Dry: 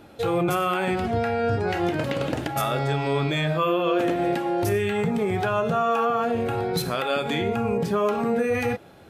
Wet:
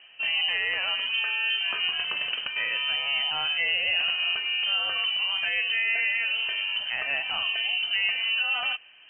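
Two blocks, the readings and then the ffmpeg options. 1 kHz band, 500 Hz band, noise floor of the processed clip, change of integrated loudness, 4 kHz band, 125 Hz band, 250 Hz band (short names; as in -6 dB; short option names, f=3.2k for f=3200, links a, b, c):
-14.0 dB, -23.5 dB, -52 dBFS, -0.5 dB, +12.5 dB, under -30 dB, under -30 dB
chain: -af "lowpass=f=2.7k:t=q:w=0.5098,lowpass=f=2.7k:t=q:w=0.6013,lowpass=f=2.7k:t=q:w=0.9,lowpass=f=2.7k:t=q:w=2.563,afreqshift=-3200,volume=-3.5dB"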